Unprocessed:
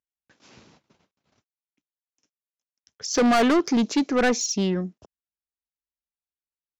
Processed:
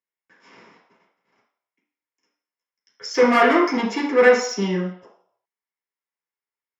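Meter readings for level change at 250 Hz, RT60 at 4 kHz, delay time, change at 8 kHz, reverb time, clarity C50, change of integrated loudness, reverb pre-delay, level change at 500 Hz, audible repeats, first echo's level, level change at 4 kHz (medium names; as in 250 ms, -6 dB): -1.0 dB, 0.60 s, no echo, -7.0 dB, 0.65 s, 4.5 dB, +3.5 dB, 3 ms, +7.0 dB, no echo, no echo, -0.5 dB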